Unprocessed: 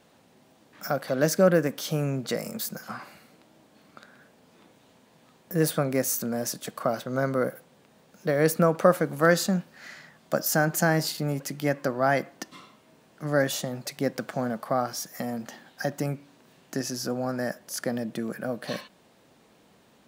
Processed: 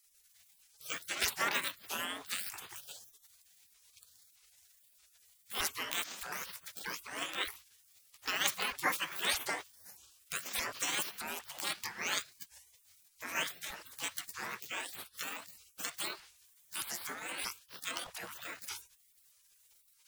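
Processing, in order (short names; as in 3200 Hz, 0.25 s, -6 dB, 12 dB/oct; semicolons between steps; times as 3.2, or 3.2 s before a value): repeated pitch sweeps +11.5 st, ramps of 0.623 s; spectral gate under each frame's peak -25 dB weak; gain +8 dB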